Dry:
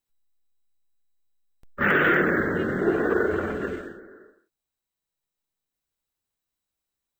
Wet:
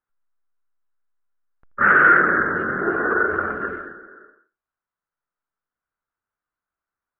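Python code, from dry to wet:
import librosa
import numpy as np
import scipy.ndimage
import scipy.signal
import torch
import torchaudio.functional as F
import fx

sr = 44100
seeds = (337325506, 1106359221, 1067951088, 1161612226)

p1 = fx.lowpass_res(x, sr, hz=1400.0, q=3.8)
p2 = fx.low_shelf(p1, sr, hz=490.0, db=-4.0)
y = p2 + fx.echo_single(p2, sr, ms=81, db=-17.0, dry=0)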